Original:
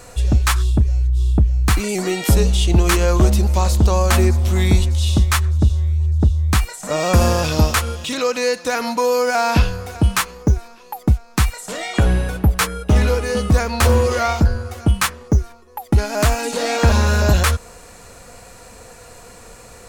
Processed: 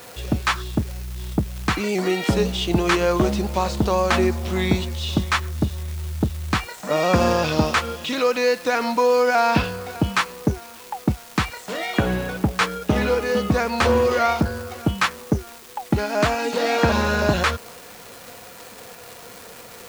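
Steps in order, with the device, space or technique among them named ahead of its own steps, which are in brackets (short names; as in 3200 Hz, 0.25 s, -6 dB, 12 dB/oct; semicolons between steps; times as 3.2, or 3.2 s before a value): 78 rpm shellac record (BPF 150–4300 Hz; crackle 400/s -30 dBFS; white noise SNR 25 dB)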